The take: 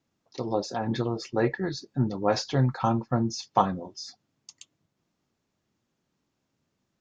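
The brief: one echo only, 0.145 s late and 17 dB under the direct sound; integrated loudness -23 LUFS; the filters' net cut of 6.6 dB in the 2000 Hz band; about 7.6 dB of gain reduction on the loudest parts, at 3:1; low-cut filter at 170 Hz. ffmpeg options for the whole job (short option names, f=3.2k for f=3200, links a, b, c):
-af "highpass=170,equalizer=f=2k:t=o:g=-8.5,acompressor=threshold=-29dB:ratio=3,aecho=1:1:145:0.141,volume=11.5dB"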